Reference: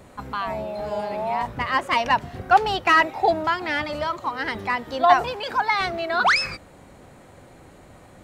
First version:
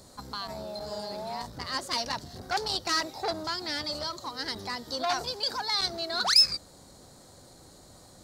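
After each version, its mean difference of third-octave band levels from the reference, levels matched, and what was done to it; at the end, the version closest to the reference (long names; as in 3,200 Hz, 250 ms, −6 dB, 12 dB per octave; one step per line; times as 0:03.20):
5.5 dB: dynamic equaliser 950 Hz, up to −5 dB, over −31 dBFS, Q 0.94
in parallel at −8 dB: hard clipping −18.5 dBFS, distortion −12 dB
on the sum: high shelf with overshoot 3,400 Hz +10 dB, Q 3
saturating transformer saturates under 3,500 Hz
level −9 dB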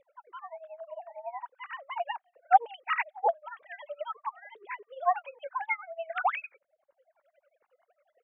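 18.0 dB: three sine waves on the formant tracks
reverb reduction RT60 0.74 s
low-shelf EQ 410 Hz +6 dB
amplitude tremolo 11 Hz, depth 90%
level −7.5 dB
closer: first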